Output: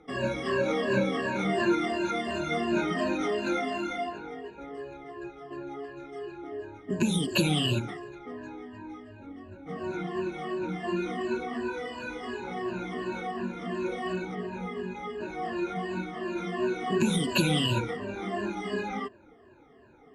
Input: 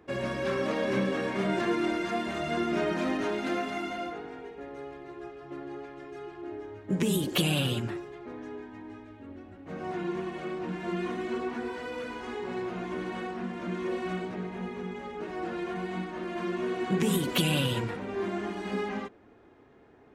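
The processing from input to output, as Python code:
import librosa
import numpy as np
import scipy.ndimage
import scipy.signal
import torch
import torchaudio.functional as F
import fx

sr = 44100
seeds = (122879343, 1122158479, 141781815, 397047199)

y = fx.spec_ripple(x, sr, per_octave=1.4, drift_hz=-2.8, depth_db=23)
y = scipy.signal.sosfilt(scipy.signal.butter(4, 10000.0, 'lowpass', fs=sr, output='sos'), y)
y = F.gain(torch.from_numpy(y), -3.5).numpy()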